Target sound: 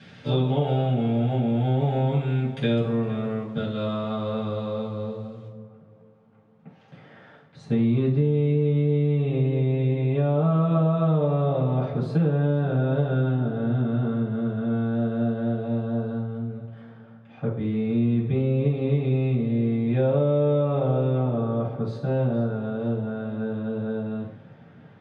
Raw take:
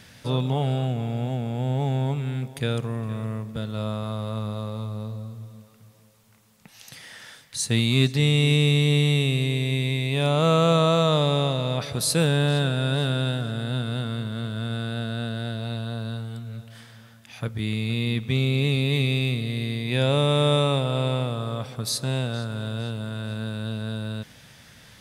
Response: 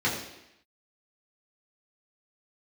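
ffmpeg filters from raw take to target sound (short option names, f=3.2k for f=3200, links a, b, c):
-filter_complex "[0:a]asetnsamples=n=441:p=0,asendcmd='5.48 lowpass f 1100',lowpass=3.6k[a];[1:a]atrim=start_sample=2205,asetrate=70560,aresample=44100[b];[a][b]afir=irnorm=-1:irlink=0,acompressor=threshold=-13dB:ratio=5,volume=-5.5dB"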